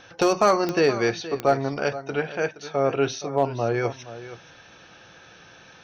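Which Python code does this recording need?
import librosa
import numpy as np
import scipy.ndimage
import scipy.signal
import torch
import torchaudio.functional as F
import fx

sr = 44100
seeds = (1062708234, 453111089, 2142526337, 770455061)

y = fx.fix_declip(x, sr, threshold_db=-10.0)
y = fx.fix_declick_ar(y, sr, threshold=10.0)
y = fx.fix_echo_inverse(y, sr, delay_ms=471, level_db=-14.5)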